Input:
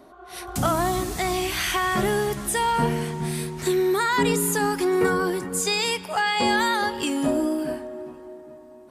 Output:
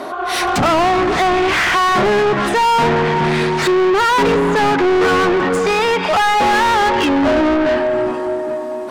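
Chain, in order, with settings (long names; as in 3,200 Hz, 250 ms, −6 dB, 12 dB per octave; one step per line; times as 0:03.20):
treble cut that deepens with the level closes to 1,500 Hz, closed at −21.5 dBFS
mid-hump overdrive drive 31 dB, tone 3,500 Hz, clips at −10.5 dBFS
level +3 dB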